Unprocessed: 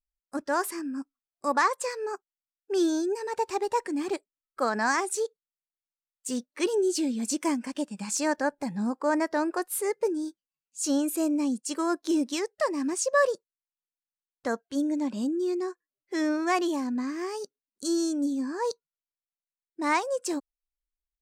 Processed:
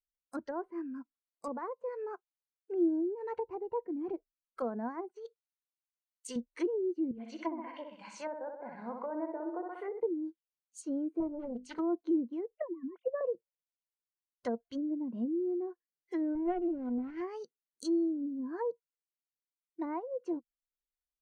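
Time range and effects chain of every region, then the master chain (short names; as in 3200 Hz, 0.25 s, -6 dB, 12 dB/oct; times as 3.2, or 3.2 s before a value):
5.08–6.36 HPF 650 Hz 6 dB/oct + negative-ratio compressor -37 dBFS
7.11–10 three-band isolator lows -22 dB, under 350 Hz, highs -22 dB, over 3200 Hz + flutter echo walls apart 10.8 m, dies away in 0.81 s
11.2–11.79 HPF 210 Hz + notches 50/100/150/200/250/300/350/400 Hz + Doppler distortion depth 0.87 ms
12.52–13.21 sine-wave speech + HPF 240 Hz
16.35–17.21 minimum comb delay 0.39 ms + transient shaper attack +3 dB, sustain -6 dB + Doppler distortion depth 0.23 ms
whole clip: treble ducked by the level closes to 540 Hz, closed at -25.5 dBFS; spectral noise reduction 6 dB; ripple EQ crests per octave 1.9, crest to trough 7 dB; gain -5.5 dB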